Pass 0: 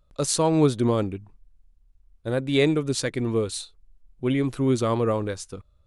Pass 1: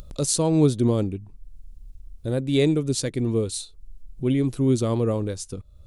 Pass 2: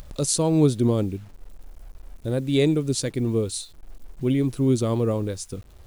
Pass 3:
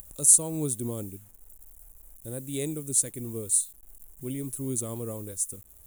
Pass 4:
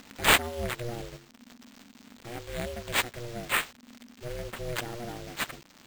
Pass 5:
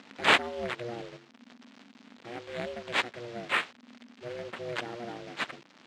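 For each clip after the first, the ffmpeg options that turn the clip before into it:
-af "equalizer=f=1400:w=0.5:g=-11.5,acompressor=mode=upward:threshold=0.0316:ratio=2.5,volume=1.5"
-af "acrusher=bits=8:mix=0:aa=0.000001"
-af "aexciter=amount=15.7:drive=5.3:freq=7100,volume=0.237"
-af "acrusher=samples=4:mix=1:aa=0.000001,aeval=exprs='val(0)*sin(2*PI*240*n/s)':c=same"
-af "highpass=190,lowpass=4000"

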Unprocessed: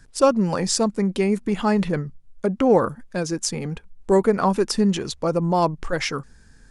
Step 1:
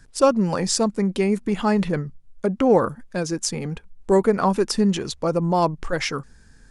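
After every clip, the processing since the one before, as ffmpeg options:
-af anull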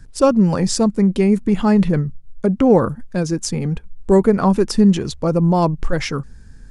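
-af "lowshelf=f=270:g=11.5"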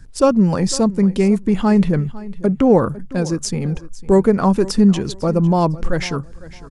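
-af "aecho=1:1:503|1006:0.119|0.0273"

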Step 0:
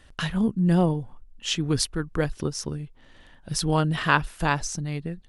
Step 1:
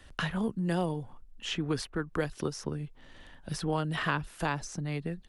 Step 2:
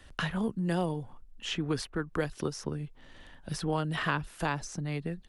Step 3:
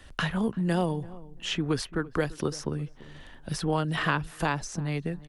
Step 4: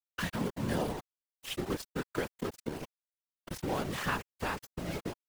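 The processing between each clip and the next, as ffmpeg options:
-filter_complex "[0:a]acrossover=split=130|380|2500[s0][s1][s2][s3];[s0]acompressor=threshold=0.00562:ratio=4[s4];[s1]acompressor=threshold=0.0178:ratio=4[s5];[s2]acompressor=threshold=0.0316:ratio=4[s6];[s3]acompressor=threshold=0.00631:ratio=4[s7];[s4][s5][s6][s7]amix=inputs=4:normalize=0"
-af anull
-filter_complex "[0:a]asplit=2[s0][s1];[s1]adelay=339,lowpass=f=1100:p=1,volume=0.119,asplit=2[s2][s3];[s3]adelay=339,lowpass=f=1100:p=1,volume=0.22[s4];[s0][s2][s4]amix=inputs=3:normalize=0,volume=1.5"
-af "aeval=exprs='val(0)*gte(abs(val(0)),0.0376)':c=same,afftfilt=real='hypot(re,im)*cos(2*PI*random(0))':imag='hypot(re,im)*sin(2*PI*random(1))':win_size=512:overlap=0.75"

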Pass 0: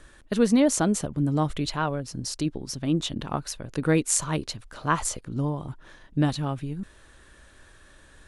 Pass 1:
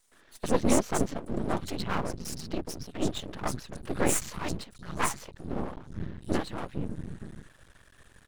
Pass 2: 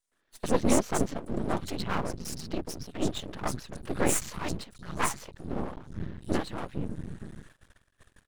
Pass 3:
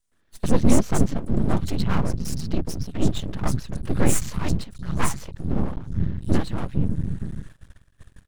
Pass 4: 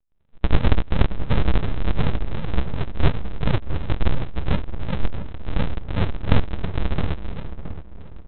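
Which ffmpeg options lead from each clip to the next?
-filter_complex "[0:a]acrossover=split=160|4700[s0][s1][s2];[s1]adelay=120[s3];[s0]adelay=590[s4];[s4][s3][s2]amix=inputs=3:normalize=0,afftfilt=real='hypot(re,im)*cos(2*PI*random(0))':imag='hypot(re,im)*sin(2*PI*random(1))':win_size=512:overlap=0.75,aeval=exprs='max(val(0),0)':c=same,volume=2"
-af "agate=range=0.158:threshold=0.00224:ratio=16:detection=peak"
-filter_complex "[0:a]bass=f=250:g=12,treble=f=4000:g=1,asplit=2[s0][s1];[s1]asoftclip=type=tanh:threshold=0.237,volume=0.501[s2];[s0][s2]amix=inputs=2:normalize=0,volume=0.891"
-filter_complex "[0:a]aresample=8000,acrusher=samples=42:mix=1:aa=0.000001:lfo=1:lforange=42:lforate=2.8,aresample=44100,asplit=2[s0][s1];[s1]adelay=670,lowpass=f=1400:p=1,volume=0.282,asplit=2[s2][s3];[s3]adelay=670,lowpass=f=1400:p=1,volume=0.39,asplit=2[s4][s5];[s5]adelay=670,lowpass=f=1400:p=1,volume=0.39,asplit=2[s6][s7];[s7]adelay=670,lowpass=f=1400:p=1,volume=0.39[s8];[s0][s2][s4][s6][s8]amix=inputs=5:normalize=0,volume=1.19"

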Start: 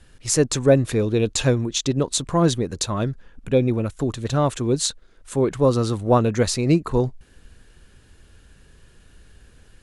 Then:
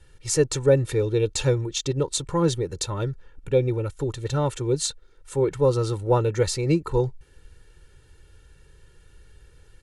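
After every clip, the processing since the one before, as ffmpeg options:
-af "equalizer=f=170:w=1.2:g=4,aecho=1:1:2.2:0.82,volume=0.501"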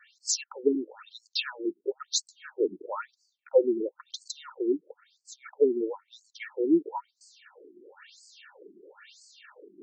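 -af "areverse,acompressor=mode=upward:threshold=0.0794:ratio=2.5,areverse,afftfilt=real='re*between(b*sr/1024,270*pow(6200/270,0.5+0.5*sin(2*PI*1*pts/sr))/1.41,270*pow(6200/270,0.5+0.5*sin(2*PI*1*pts/sr))*1.41)':imag='im*between(b*sr/1024,270*pow(6200/270,0.5+0.5*sin(2*PI*1*pts/sr))/1.41,270*pow(6200/270,0.5+0.5*sin(2*PI*1*pts/sr))*1.41)':win_size=1024:overlap=0.75,volume=1.26"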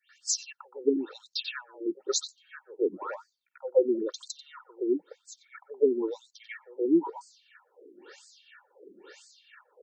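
-filter_complex "[0:a]acrossover=split=800|3300[s0][s1][s2];[s1]adelay=90[s3];[s0]adelay=210[s4];[s4][s3][s2]amix=inputs=3:normalize=0"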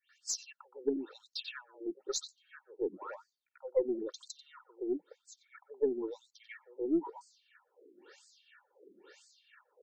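-af "aeval=exprs='0.266*(cos(1*acos(clip(val(0)/0.266,-1,1)))-cos(1*PI/2))+0.00596*(cos(4*acos(clip(val(0)/0.266,-1,1)))-cos(4*PI/2))':c=same,volume=0.422"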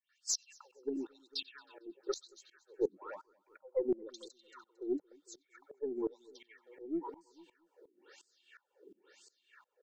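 -af "aecho=1:1:226|452|678:0.1|0.041|0.0168,aeval=exprs='val(0)*pow(10,-20*if(lt(mod(-2.8*n/s,1),2*abs(-2.8)/1000),1-mod(-2.8*n/s,1)/(2*abs(-2.8)/1000),(mod(-2.8*n/s,1)-2*abs(-2.8)/1000)/(1-2*abs(-2.8)/1000))/20)':c=same,volume=1.58"

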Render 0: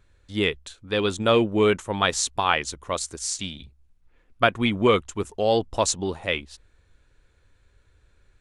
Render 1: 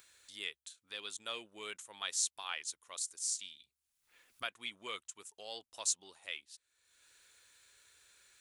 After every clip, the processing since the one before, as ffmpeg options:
-af "aderivative,acompressor=mode=upward:threshold=0.00891:ratio=2.5,volume=0.473"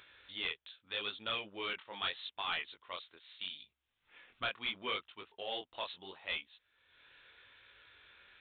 -af "flanger=delay=18:depth=6.6:speed=0.78,aresample=8000,asoftclip=type=tanh:threshold=0.0106,aresample=44100,volume=3.55"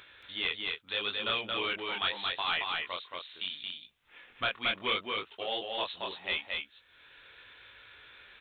-af "aecho=1:1:225:0.708,volume=1.88"

